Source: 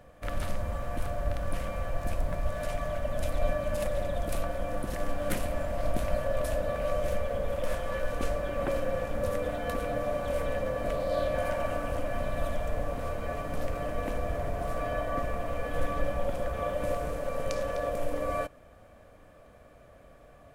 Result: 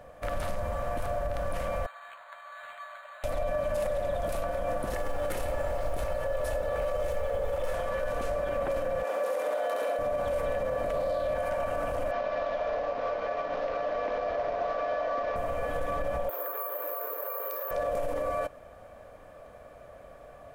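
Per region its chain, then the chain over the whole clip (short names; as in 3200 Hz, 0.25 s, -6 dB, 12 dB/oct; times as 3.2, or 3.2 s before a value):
1.86–3.24 HPF 1200 Hz 24 dB/oct + air absorption 310 m + decimation joined by straight lines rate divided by 8×
4.93–7.73 comb 2.3 ms, depth 44% + companded quantiser 8-bit
9.03–9.99 HPF 320 Hz 24 dB/oct + flutter echo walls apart 11.5 m, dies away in 1.2 s
12.11–15.36 CVSD 32 kbps + three-band isolator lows -17 dB, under 260 Hz, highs -16 dB, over 4000 Hz
16.29–17.71 rippled Chebyshev high-pass 300 Hz, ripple 9 dB + careless resampling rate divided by 3×, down filtered, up zero stuff
whole clip: EQ curve 320 Hz 0 dB, 590 Hz +8 dB, 2900 Hz +2 dB; limiter -22.5 dBFS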